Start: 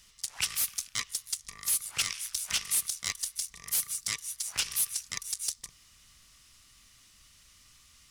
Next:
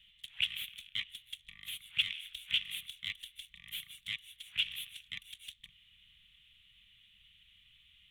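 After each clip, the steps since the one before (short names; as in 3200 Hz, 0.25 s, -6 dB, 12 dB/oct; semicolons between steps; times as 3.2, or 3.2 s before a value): EQ curve 210 Hz 0 dB, 310 Hz -26 dB, 1100 Hz -15 dB, 2400 Hz +8 dB, 3400 Hz +14 dB, 4900 Hz -27 dB, 15000 Hz -9 dB; gain -7.5 dB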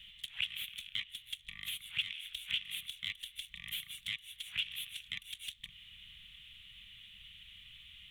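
compressor 2:1, threshold -52 dBFS, peak gain reduction 15 dB; gain +9 dB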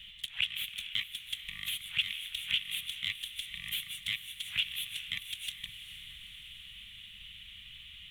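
diffused feedback echo 0.45 s, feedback 62%, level -12.5 dB; gain +4.5 dB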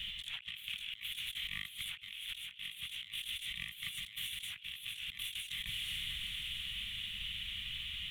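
negative-ratio compressor -47 dBFS, ratio -1; gain +2 dB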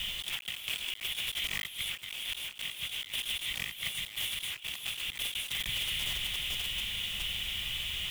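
block floating point 3-bit; gain +6 dB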